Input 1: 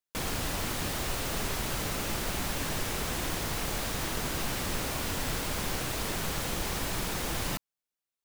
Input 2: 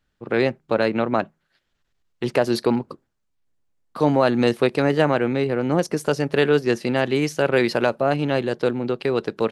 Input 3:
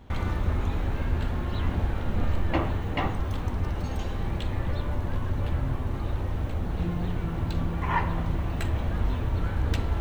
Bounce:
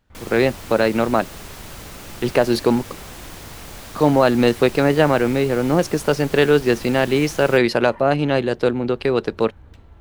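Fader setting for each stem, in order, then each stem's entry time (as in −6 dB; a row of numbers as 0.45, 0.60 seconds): −4.5, +3.0, −19.5 decibels; 0.00, 0.00, 0.00 seconds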